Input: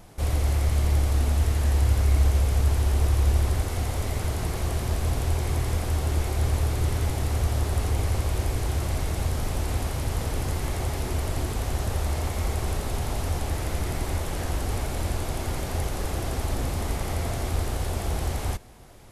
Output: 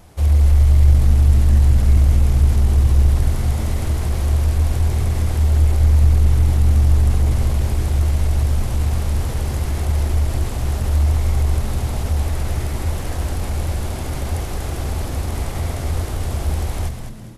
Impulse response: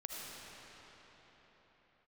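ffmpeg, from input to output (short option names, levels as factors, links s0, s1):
-filter_complex "[0:a]equalizer=f=74:w=6.9:g=13,bandreject=f=220.9:t=h:w=4,bandreject=f=441.8:t=h:w=4,bandreject=f=662.7:t=h:w=4,asplit=2[s0][s1];[s1]asoftclip=type=tanh:threshold=0.188,volume=0.562[s2];[s0][s2]amix=inputs=2:normalize=0,atempo=1.1,asplit=6[s3][s4][s5][s6][s7][s8];[s4]adelay=206,afreqshift=-97,volume=0.447[s9];[s5]adelay=412,afreqshift=-194,volume=0.178[s10];[s6]adelay=618,afreqshift=-291,volume=0.0716[s11];[s7]adelay=824,afreqshift=-388,volume=0.0285[s12];[s8]adelay=1030,afreqshift=-485,volume=0.0115[s13];[s3][s9][s10][s11][s12][s13]amix=inputs=6:normalize=0,volume=0.794"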